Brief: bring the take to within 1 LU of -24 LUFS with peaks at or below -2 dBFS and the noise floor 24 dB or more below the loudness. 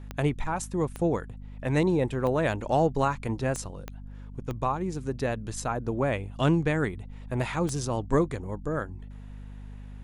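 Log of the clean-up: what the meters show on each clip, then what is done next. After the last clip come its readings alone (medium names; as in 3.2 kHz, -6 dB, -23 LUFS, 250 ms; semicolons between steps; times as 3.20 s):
clicks found 7; hum 50 Hz; highest harmonic 250 Hz; hum level -39 dBFS; loudness -28.5 LUFS; peak level -11.5 dBFS; loudness target -24.0 LUFS
-> de-click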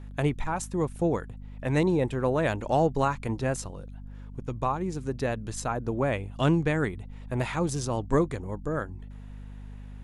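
clicks found 0; hum 50 Hz; highest harmonic 250 Hz; hum level -39 dBFS
-> hum notches 50/100/150/200/250 Hz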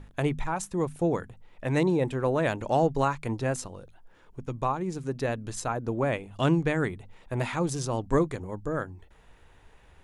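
hum not found; loudness -29.0 LUFS; peak level -12.5 dBFS; loudness target -24.0 LUFS
-> trim +5 dB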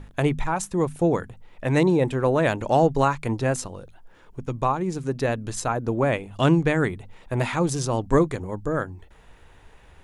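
loudness -24.0 LUFS; peak level -7.5 dBFS; noise floor -52 dBFS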